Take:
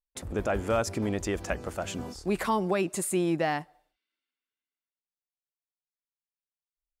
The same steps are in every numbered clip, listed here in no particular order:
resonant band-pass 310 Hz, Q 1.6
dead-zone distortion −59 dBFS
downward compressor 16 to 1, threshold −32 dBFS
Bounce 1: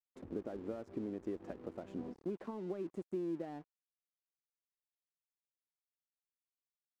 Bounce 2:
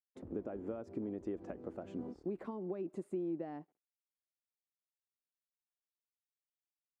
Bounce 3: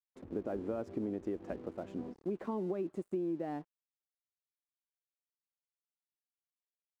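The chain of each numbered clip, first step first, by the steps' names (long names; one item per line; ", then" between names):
downward compressor, then resonant band-pass, then dead-zone distortion
dead-zone distortion, then downward compressor, then resonant band-pass
resonant band-pass, then dead-zone distortion, then downward compressor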